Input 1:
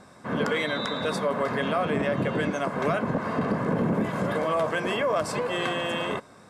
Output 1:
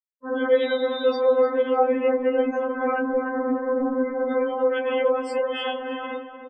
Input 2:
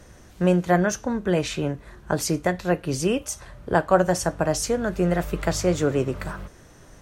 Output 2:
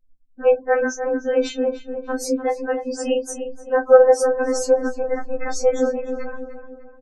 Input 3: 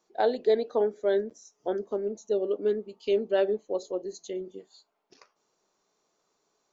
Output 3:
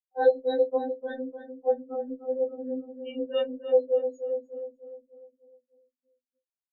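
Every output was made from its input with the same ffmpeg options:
-filter_complex "[0:a]afftfilt=real='re*gte(hypot(re,im),0.0355)':imag='im*gte(hypot(re,im),0.0355)':win_size=1024:overlap=0.75,equalizer=f=520:w=4.7:g=10.5,asplit=2[a][b];[b]adelay=300,lowpass=f=1.8k:p=1,volume=-9dB,asplit=2[c][d];[d]adelay=300,lowpass=f=1.8k:p=1,volume=0.5,asplit=2[e][f];[f]adelay=300,lowpass=f=1.8k:p=1,volume=0.5,asplit=2[g][h];[h]adelay=300,lowpass=f=1.8k:p=1,volume=0.5,asplit=2[i][j];[j]adelay=300,lowpass=f=1.8k:p=1,volume=0.5,asplit=2[k][l];[l]adelay=300,lowpass=f=1.8k:p=1,volume=0.5[m];[c][e][g][i][k][m]amix=inputs=6:normalize=0[n];[a][n]amix=inputs=2:normalize=0,aeval=exprs='val(0)*sin(2*PI*45*n/s)':c=same,asplit=2[o][p];[p]adelay=18,volume=-9dB[q];[o][q]amix=inputs=2:normalize=0,afftfilt=real='re*3.46*eq(mod(b,12),0)':imag='im*3.46*eq(mod(b,12),0)':win_size=2048:overlap=0.75,volume=4dB"

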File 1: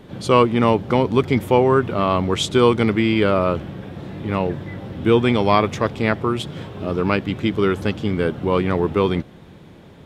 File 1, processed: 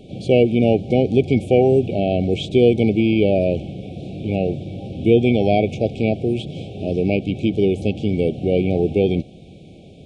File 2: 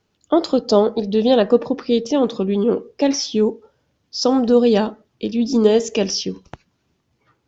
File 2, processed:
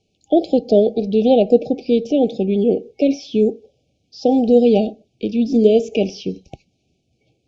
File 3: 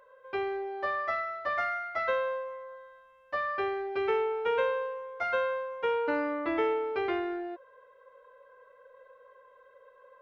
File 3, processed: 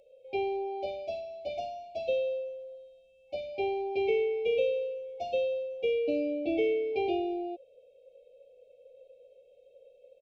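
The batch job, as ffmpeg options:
-filter_complex "[0:a]afftfilt=real='re*(1-between(b*sr/4096,800,2200))':imag='im*(1-between(b*sr/4096,800,2200))':win_size=4096:overlap=0.75,aresample=22050,aresample=44100,acrossover=split=2900[a][b];[b]acompressor=threshold=-45dB:ratio=4:attack=1:release=60[c];[a][c]amix=inputs=2:normalize=0,volume=1.5dB"

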